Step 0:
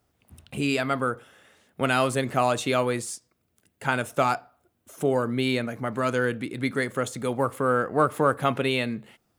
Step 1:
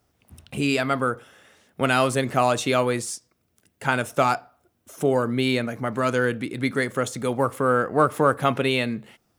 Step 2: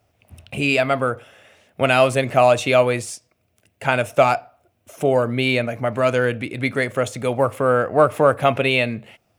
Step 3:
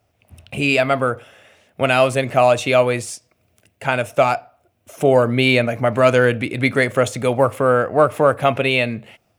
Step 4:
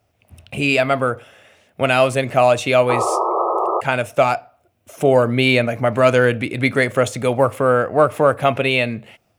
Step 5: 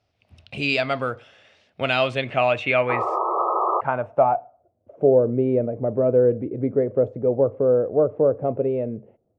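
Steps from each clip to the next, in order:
bell 5600 Hz +4 dB 0.25 oct; gain +2.5 dB
fifteen-band EQ 100 Hz +9 dB, 630 Hz +10 dB, 2500 Hz +9 dB; gain -1 dB
AGC; gain -1 dB
painted sound noise, 2.89–3.81, 330–1300 Hz -19 dBFS
low-pass sweep 4600 Hz -> 460 Hz, 1.7–5.17; gain -7 dB

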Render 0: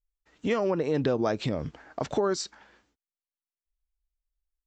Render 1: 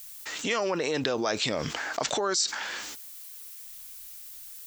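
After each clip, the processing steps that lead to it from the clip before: tilt +4.5 dB/oct; fast leveller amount 70%; gain -4 dB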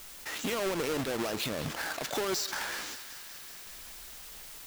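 half-waves squared off; limiter -21 dBFS, peak gain reduction 11 dB; thinning echo 0.19 s, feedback 78%, high-pass 740 Hz, level -13 dB; gain -5.5 dB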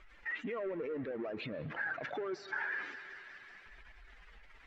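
spectral contrast raised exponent 1.9; synth low-pass 2000 Hz, resonance Q 2.4; reverb RT60 3.7 s, pre-delay 0.11 s, DRR 17.5 dB; gain -7 dB

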